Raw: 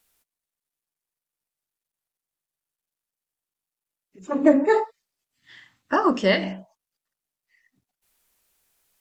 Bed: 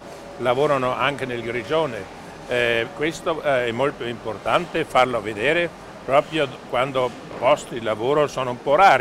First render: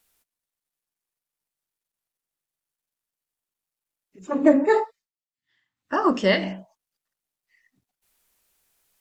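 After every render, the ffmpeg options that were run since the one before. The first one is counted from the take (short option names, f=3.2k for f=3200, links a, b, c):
-filter_complex "[0:a]asplit=3[a][b][c];[a]atrim=end=5.12,asetpts=PTS-STARTPTS,afade=t=out:st=4.83:d=0.29:silence=0.0749894[d];[b]atrim=start=5.12:end=5.76,asetpts=PTS-STARTPTS,volume=-22.5dB[e];[c]atrim=start=5.76,asetpts=PTS-STARTPTS,afade=t=in:d=0.29:silence=0.0749894[f];[d][e][f]concat=n=3:v=0:a=1"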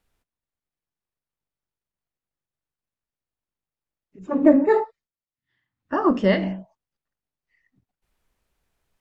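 -af "lowpass=f=1.7k:p=1,lowshelf=f=160:g=11"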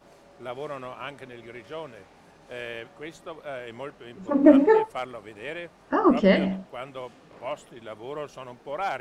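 -filter_complex "[1:a]volume=-16dB[a];[0:a][a]amix=inputs=2:normalize=0"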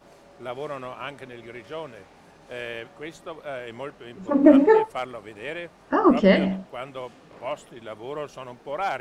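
-af "volume=2dB,alimiter=limit=-3dB:level=0:latency=1"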